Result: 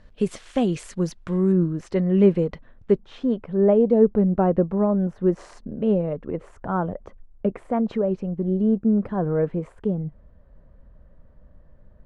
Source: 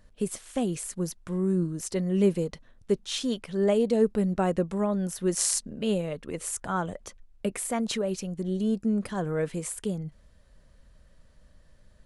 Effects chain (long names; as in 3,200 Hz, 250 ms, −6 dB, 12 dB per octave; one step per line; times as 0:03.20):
low-pass filter 4,100 Hz 12 dB per octave, from 0:01.52 2,100 Hz, from 0:02.97 1,000 Hz
level +6.5 dB